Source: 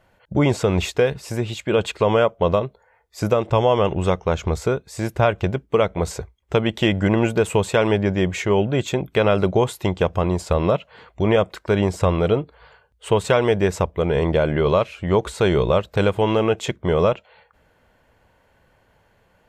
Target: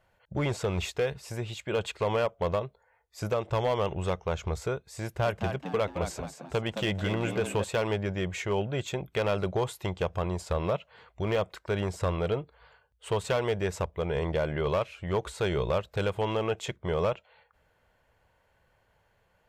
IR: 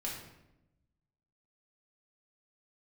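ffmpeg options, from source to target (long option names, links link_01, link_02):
-filter_complex "[0:a]equalizer=frequency=260:width=1.4:gain=-7,volume=12.5dB,asoftclip=hard,volume=-12.5dB,asettb=1/sr,asplit=3[link_01][link_02][link_03];[link_01]atrim=end=5.044[link_04];[link_02]atrim=start=5.04:end=7.64,asetpts=PTS-STARTPTS,afade=type=in:duration=0.004:curve=qsin,afade=type=out:start_time=2.596:duration=0.004:curve=qsin,asplit=5[link_05][link_06][link_07][link_08][link_09];[link_06]adelay=218,afreqshift=86,volume=-7.5dB[link_10];[link_07]adelay=436,afreqshift=172,volume=-17.1dB[link_11];[link_08]adelay=654,afreqshift=258,volume=-26.8dB[link_12];[link_09]adelay=872,afreqshift=344,volume=-36.4dB[link_13];[link_05][link_10][link_11][link_12][link_13]amix=inputs=5:normalize=0,atrim=end_sample=114660[link_14];[link_03]atrim=start=7.636[link_15];[link_04][link_14]acrossfade=duration=0.004:curve1=hsin:curve2=qsin[link_16];[link_16][link_15]acrossfade=duration=0.004:curve1=qsin:curve2=hsin,volume=-8dB"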